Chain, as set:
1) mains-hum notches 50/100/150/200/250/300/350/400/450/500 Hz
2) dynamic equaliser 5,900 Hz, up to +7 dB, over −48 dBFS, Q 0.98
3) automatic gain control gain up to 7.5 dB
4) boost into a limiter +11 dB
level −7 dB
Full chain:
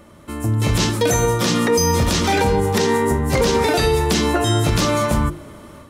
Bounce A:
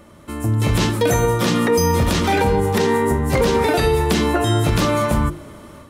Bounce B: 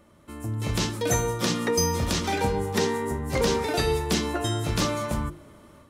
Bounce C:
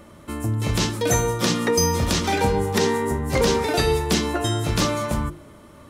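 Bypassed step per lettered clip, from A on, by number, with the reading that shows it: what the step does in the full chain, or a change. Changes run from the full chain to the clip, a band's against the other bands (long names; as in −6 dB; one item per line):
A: 2, 8 kHz band −5.0 dB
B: 4, change in crest factor +6.5 dB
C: 3, change in crest factor +4.0 dB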